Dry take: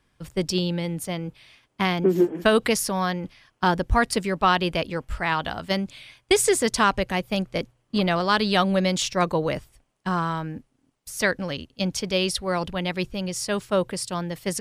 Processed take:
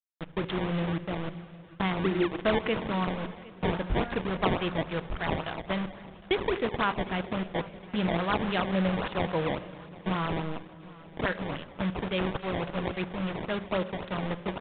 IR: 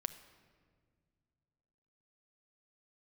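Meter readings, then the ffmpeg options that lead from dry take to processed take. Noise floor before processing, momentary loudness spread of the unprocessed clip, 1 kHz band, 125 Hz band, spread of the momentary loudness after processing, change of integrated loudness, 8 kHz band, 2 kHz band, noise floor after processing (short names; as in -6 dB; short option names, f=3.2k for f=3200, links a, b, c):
-70 dBFS, 11 LU, -7.0 dB, -3.5 dB, 9 LU, -6.5 dB, under -40 dB, -6.5 dB, -49 dBFS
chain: -filter_complex "[0:a]asplit=2[a][b];[b]acompressor=threshold=-30dB:ratio=5,volume=1dB[c];[a][c]amix=inputs=2:normalize=0,flanger=delay=6.5:depth=1.7:regen=-87:speed=1:shape=sinusoidal,aresample=16000,acrusher=bits=4:mix=0:aa=0.000001,aresample=44100[d];[1:a]atrim=start_sample=2205[e];[d][e]afir=irnorm=-1:irlink=0,acrusher=samples=19:mix=1:aa=0.000001:lfo=1:lforange=30.4:lforate=3.6,aresample=8000,aresample=44100,aecho=1:1:759|1518|2277:0.0891|0.0419|0.0197,volume=-3.5dB"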